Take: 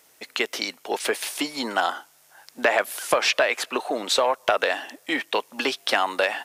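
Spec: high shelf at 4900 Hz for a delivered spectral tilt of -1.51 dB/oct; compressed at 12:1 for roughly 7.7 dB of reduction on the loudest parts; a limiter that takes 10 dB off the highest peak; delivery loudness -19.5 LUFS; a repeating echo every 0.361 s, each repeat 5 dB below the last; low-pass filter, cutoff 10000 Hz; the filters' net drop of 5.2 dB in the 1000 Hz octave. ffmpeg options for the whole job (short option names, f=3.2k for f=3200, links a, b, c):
-af "lowpass=10k,equalizer=f=1k:t=o:g=-7,highshelf=f=4.9k:g=-6.5,acompressor=threshold=-26dB:ratio=12,alimiter=limit=-21.5dB:level=0:latency=1,aecho=1:1:361|722|1083|1444|1805|2166|2527:0.562|0.315|0.176|0.0988|0.0553|0.031|0.0173,volume=14dB"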